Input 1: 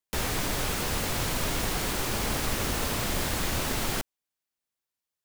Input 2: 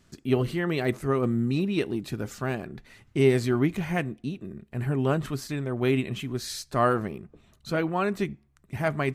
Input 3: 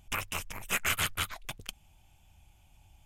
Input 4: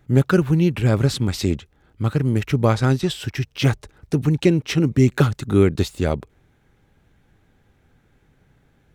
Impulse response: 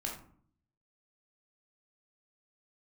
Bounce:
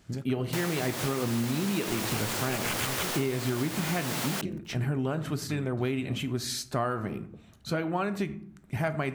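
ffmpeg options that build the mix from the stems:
-filter_complex "[0:a]highpass=340,adelay=400,volume=0dB[a];[1:a]highpass=70,volume=0dB,asplit=3[b][c][d];[c]volume=-8.5dB[e];[2:a]acrusher=bits=6:dc=4:mix=0:aa=0.000001,adelay=1800,volume=-3.5dB[f];[3:a]acompressor=threshold=-25dB:ratio=5,volume=-9.5dB,asplit=2[g][h];[h]volume=-12dB[i];[d]apad=whole_len=394414[j];[g][j]sidechaincompress=threshold=-36dB:ratio=8:attack=16:release=412[k];[4:a]atrim=start_sample=2205[l];[e][i]amix=inputs=2:normalize=0[m];[m][l]afir=irnorm=-1:irlink=0[n];[a][b][f][k][n]amix=inputs=5:normalize=0,acompressor=threshold=-25dB:ratio=10"

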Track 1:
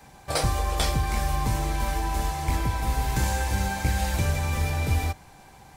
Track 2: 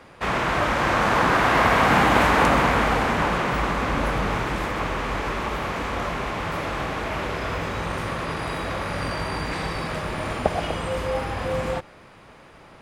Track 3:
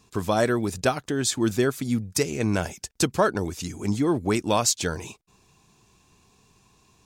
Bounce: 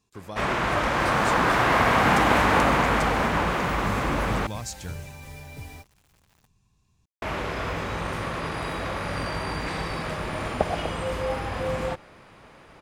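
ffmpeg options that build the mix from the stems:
-filter_complex "[0:a]aecho=1:1:7.2:0.53,acrusher=bits=6:mix=0:aa=0.000001,adelay=700,volume=-14.5dB[a];[1:a]adelay=150,volume=-2dB,asplit=3[b][c][d];[b]atrim=end=4.47,asetpts=PTS-STARTPTS,afade=t=out:st=4.466:d=0.004:c=hsin[e];[c]atrim=start=4.47:end=7.22,asetpts=PTS-STARTPTS,volume=0[f];[d]atrim=start=7.22,asetpts=PTS-STARTPTS,afade=t=in:d=0.004:c=hsin[g];[e][f][g]concat=n=3:v=0:a=1[h];[2:a]asubboost=boost=5:cutoff=170,volume=-14dB[i];[a][h][i]amix=inputs=3:normalize=0"

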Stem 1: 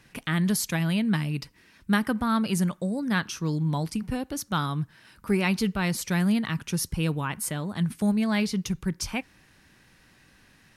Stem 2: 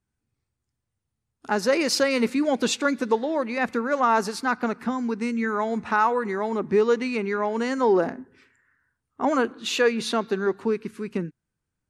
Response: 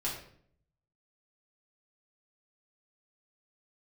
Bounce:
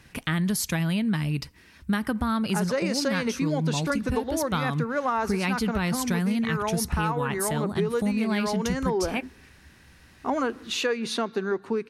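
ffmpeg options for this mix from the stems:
-filter_complex "[0:a]equalizer=f=70:w=3.1:g=13.5,volume=3dB[a];[1:a]bandreject=f=7.3k:w=20,adelay=1050,volume=-1dB[b];[a][b]amix=inputs=2:normalize=0,acompressor=threshold=-22dB:ratio=6"

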